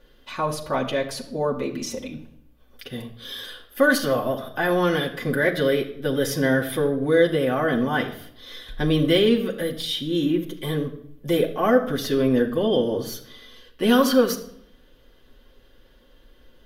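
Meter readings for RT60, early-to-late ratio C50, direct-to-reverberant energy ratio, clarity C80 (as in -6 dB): 0.70 s, 12.0 dB, -1.5 dB, 14.5 dB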